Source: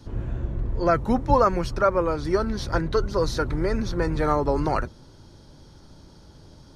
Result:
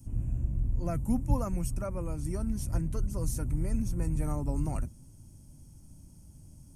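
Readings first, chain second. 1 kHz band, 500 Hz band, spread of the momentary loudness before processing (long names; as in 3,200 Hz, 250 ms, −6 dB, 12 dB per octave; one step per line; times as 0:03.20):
−19.0 dB, −17.5 dB, 10 LU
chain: drawn EQ curve 120 Hz 0 dB, 270 Hz −4 dB, 420 Hz −19 dB, 650 Hz −13 dB, 1,600 Hz −22 dB, 2,600 Hz −10 dB, 3,900 Hz −26 dB, 8,200 Hz +11 dB
level −2 dB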